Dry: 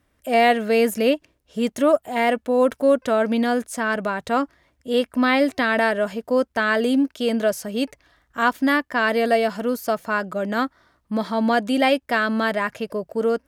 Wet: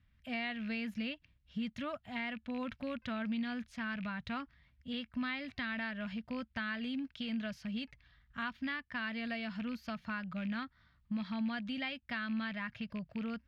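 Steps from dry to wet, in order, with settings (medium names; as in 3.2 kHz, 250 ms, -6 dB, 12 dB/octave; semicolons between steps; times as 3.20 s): rattle on loud lows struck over -32 dBFS, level -28 dBFS; FFT filter 110 Hz 0 dB, 220 Hz -5 dB, 370 Hz -28 dB, 2.2 kHz -3 dB, 4.1 kHz +1 dB, 8.8 kHz -2 dB; compression 2.5:1, threshold -36 dBFS, peak gain reduction 10 dB; distance through air 300 m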